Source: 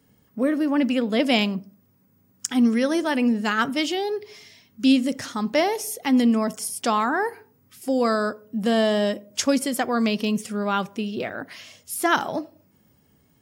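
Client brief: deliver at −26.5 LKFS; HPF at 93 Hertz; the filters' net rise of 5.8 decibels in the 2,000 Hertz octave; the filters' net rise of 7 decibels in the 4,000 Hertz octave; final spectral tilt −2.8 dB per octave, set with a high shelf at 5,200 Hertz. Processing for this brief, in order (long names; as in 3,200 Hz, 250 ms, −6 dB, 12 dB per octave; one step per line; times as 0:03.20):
high-pass filter 93 Hz
parametric band 2,000 Hz +5.5 dB
parametric band 4,000 Hz +6 dB
high-shelf EQ 5,200 Hz +3.5 dB
level −5.5 dB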